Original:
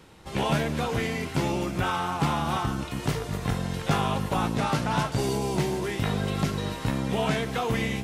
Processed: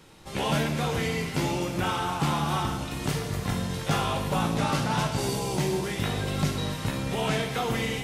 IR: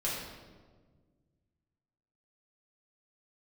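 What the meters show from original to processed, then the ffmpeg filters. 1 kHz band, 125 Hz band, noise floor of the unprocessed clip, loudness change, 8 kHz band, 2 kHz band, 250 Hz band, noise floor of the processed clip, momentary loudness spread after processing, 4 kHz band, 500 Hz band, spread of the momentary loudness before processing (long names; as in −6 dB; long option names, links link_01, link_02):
−0.5 dB, −0.5 dB, −38 dBFS, −0.5 dB, +3.0 dB, 0.0 dB, −1.0 dB, −35 dBFS, 4 LU, +2.0 dB, −1.0 dB, 4 LU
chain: -filter_complex "[0:a]asplit=2[link_01][link_02];[1:a]atrim=start_sample=2205,highshelf=frequency=2500:gain=11.5[link_03];[link_02][link_03]afir=irnorm=-1:irlink=0,volume=-10dB[link_04];[link_01][link_04]amix=inputs=2:normalize=0,volume=-4dB"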